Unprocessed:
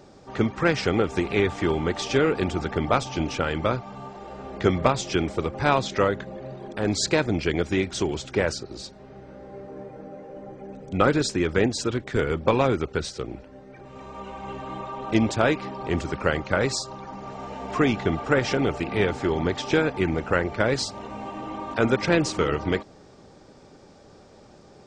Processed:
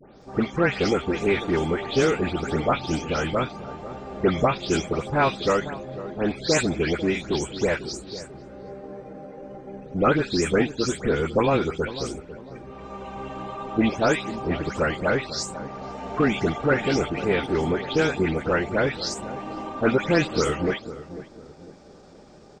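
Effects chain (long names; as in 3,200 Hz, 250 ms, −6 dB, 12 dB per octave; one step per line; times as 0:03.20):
every frequency bin delayed by itself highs late, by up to 223 ms
tempo change 1.1×
feedback echo with a low-pass in the loop 498 ms, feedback 41%, low-pass 860 Hz, level −13 dB
level +1 dB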